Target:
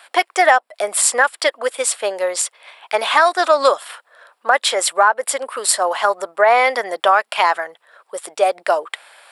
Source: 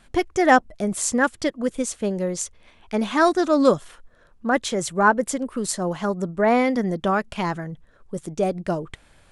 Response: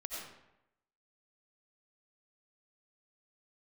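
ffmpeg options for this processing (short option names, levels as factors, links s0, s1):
-af "highpass=f=630:w=0.5412,highpass=f=630:w=1.3066,equalizer=f=6300:t=o:w=0.24:g=-14.5,acompressor=threshold=0.0708:ratio=5,alimiter=level_in=5.62:limit=0.891:release=50:level=0:latency=1,volume=0.891"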